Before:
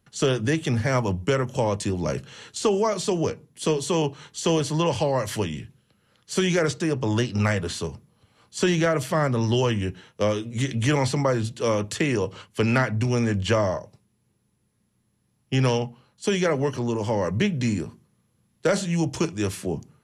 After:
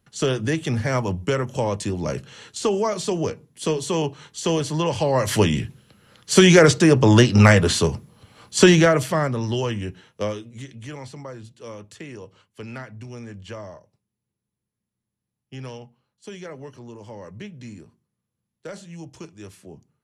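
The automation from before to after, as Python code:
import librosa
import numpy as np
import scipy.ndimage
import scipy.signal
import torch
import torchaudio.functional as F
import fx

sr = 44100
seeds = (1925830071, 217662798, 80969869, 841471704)

y = fx.gain(x, sr, db=fx.line((4.95, 0.0), (5.48, 10.0), (8.6, 10.0), (9.41, -2.5), (10.23, -2.5), (10.74, -14.5)))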